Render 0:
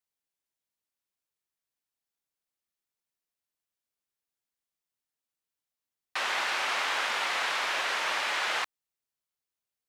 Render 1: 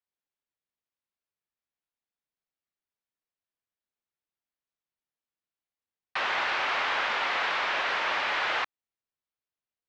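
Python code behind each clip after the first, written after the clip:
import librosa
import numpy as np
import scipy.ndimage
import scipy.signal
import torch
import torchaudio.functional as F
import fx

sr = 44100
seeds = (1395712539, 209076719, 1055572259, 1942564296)

y = fx.leveller(x, sr, passes=1)
y = scipy.ndimage.gaussian_filter1d(y, 1.9, mode='constant')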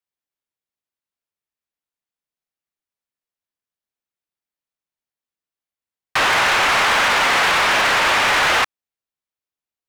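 y = fx.leveller(x, sr, passes=3)
y = y * 10.0 ** (6.5 / 20.0)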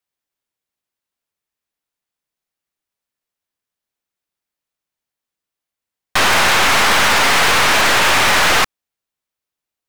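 y = np.minimum(x, 2.0 * 10.0 ** (-19.0 / 20.0) - x)
y = y * 10.0 ** (6.0 / 20.0)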